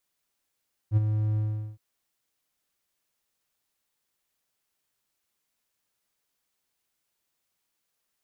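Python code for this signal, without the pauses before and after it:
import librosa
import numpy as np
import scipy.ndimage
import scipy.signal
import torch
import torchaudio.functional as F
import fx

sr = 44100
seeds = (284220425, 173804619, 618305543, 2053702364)

y = fx.adsr_tone(sr, wave='triangle', hz=107.0, attack_ms=57.0, decay_ms=25.0, sustain_db=-7.0, held_s=0.46, release_ms=406.0, level_db=-14.0)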